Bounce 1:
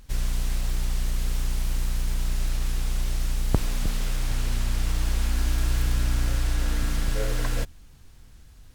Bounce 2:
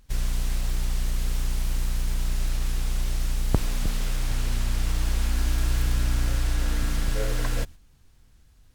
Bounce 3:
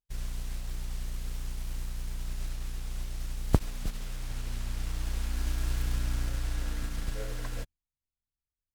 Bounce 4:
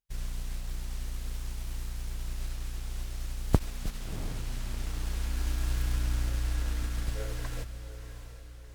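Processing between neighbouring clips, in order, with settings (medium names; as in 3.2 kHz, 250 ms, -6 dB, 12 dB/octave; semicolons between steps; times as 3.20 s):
gate -37 dBFS, range -7 dB
upward expansion 2.5:1, over -43 dBFS
echo that smears into a reverb 689 ms, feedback 51%, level -10.5 dB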